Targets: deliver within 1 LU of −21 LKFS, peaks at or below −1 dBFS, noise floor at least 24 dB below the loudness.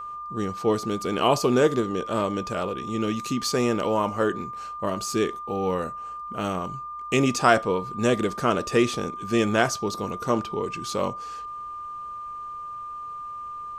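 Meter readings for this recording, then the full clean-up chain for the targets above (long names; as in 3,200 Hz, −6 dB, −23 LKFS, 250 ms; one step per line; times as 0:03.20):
interfering tone 1,200 Hz; level of the tone −33 dBFS; integrated loudness −26.0 LKFS; sample peak −3.0 dBFS; target loudness −21.0 LKFS
→ notch filter 1,200 Hz, Q 30
level +5 dB
brickwall limiter −1 dBFS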